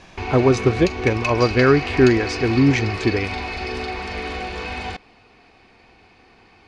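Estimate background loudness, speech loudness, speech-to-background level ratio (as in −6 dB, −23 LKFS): −27.0 LKFS, −18.5 LKFS, 8.5 dB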